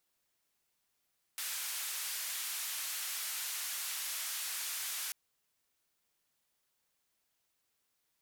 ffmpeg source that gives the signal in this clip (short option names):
-f lavfi -i "anoisesrc=c=white:d=3.74:r=44100:seed=1,highpass=f=1300,lowpass=f=15000,volume=-32dB"